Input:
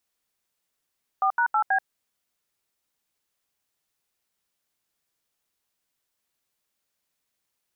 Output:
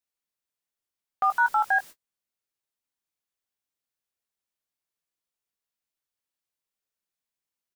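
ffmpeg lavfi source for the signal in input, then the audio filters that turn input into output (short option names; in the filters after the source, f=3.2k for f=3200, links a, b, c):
-f lavfi -i "aevalsrc='0.0841*clip(min(mod(t,0.161),0.083-mod(t,0.161))/0.002,0,1)*(eq(floor(t/0.161),0)*(sin(2*PI*770*mod(t,0.161))+sin(2*PI*1209*mod(t,0.161)))+eq(floor(t/0.161),1)*(sin(2*PI*941*mod(t,0.161))+sin(2*PI*1477*mod(t,0.161)))+eq(floor(t/0.161),2)*(sin(2*PI*852*mod(t,0.161))+sin(2*PI*1336*mod(t,0.161)))+eq(floor(t/0.161),3)*(sin(2*PI*770*mod(t,0.161))+sin(2*PI*1633*mod(t,0.161))))':d=0.644:s=44100"
-filter_complex "[0:a]aeval=exprs='val(0)+0.5*0.00668*sgn(val(0))':c=same,agate=range=-41dB:threshold=-37dB:ratio=16:detection=peak,asplit=2[a][b];[b]adelay=19,volume=-10.5dB[c];[a][c]amix=inputs=2:normalize=0"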